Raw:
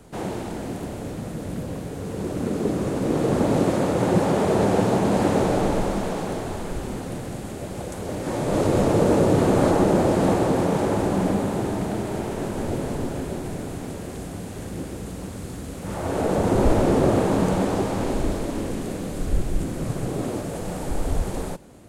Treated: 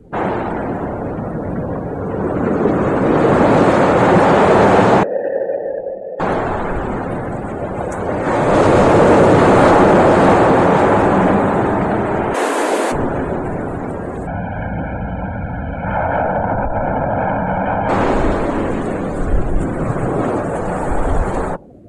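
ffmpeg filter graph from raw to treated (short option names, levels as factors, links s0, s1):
-filter_complex "[0:a]asettb=1/sr,asplit=3[s0][s1][s2];[s0]atrim=end=5.034[s3];[s1]atrim=start=5.03:end=6.2,asetpts=PTS-STARTPTS,afade=t=in:d=0.004:c=qsin,afade=t=out:st=1.166:d=0.004:c=qsin,asubboost=boost=11.5:cutoff=120,asplit=3[s4][s5][s6];[s4]bandpass=f=530:t=q:w=8,volume=1[s7];[s5]bandpass=f=1840:t=q:w=8,volume=0.501[s8];[s6]bandpass=f=2480:t=q:w=8,volume=0.355[s9];[s7][s8][s9]amix=inputs=3:normalize=0,adynamicsmooth=sensitivity=4.5:basefreq=1400[s10];[s2]atrim=start=6.196[s11];[s3][s10]acrossfade=d=0.004:c1=hsin:c2=qsin[s12];[s12][s11]acrossfade=d=0.004:c1=qsin:c2=hsin,asettb=1/sr,asplit=3[s13][s14][s15];[s13]atrim=end=12.344[s16];[s14]atrim=start=12.34:end=12.92,asetpts=PTS-STARTPTS,afade=t=in:d=0.004:c=qsin,afade=t=out:st=0.576:d=0.004:c=qsin,highpass=f=180:w=0.5412,highpass=f=180:w=1.3066,highshelf=f=2200:g=9,afreqshift=74[s17];[s15]atrim=start=12.916[s18];[s16][s17]acrossfade=d=0.004:c1=hsin:c2=qsin[s19];[s19][s18]acrossfade=d=0.004:c1=qsin:c2=hsin,asettb=1/sr,asplit=3[s20][s21][s22];[s20]atrim=end=14.274[s23];[s21]atrim=start=14.27:end=17.89,asetpts=PTS-STARTPTS,afade=t=in:d=0.004:c=qsin,afade=t=out:st=3.616:d=0.004:c=qsin,aecho=1:1:1.3:0.81,atrim=end_sample=159642,acompressor=threshold=0.0631:ratio=10:attack=3.2:release=140:knee=1:detection=peak,lowpass=f=3300:w=0.5412,lowpass=f=3300:w=1.3066[s24];[s22]atrim=start=17.886[s25];[s23][s24]acrossfade=d=0.004:c1=hsin:c2=qsin[s26];[s26][s25]acrossfade=d=0.004:c1=qsin:c2=hsin,afftdn=nr=26:nf=-43,equalizer=f=1400:w=0.51:g=10.5,acontrast=84"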